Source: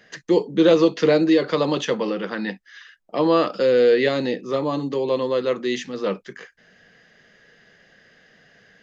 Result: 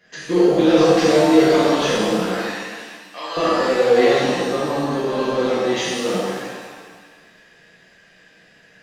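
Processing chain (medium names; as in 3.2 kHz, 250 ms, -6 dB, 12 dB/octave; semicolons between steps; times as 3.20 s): 2.35–3.37 s: high-pass 1.3 kHz 12 dB/octave; transient shaper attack +6 dB, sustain +10 dB; in parallel at -5 dB: hard clipper -16.5 dBFS, distortion -7 dB; on the sum: pitch-shifted reverb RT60 1.5 s, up +7 st, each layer -8 dB, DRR -9.5 dB; trim -12.5 dB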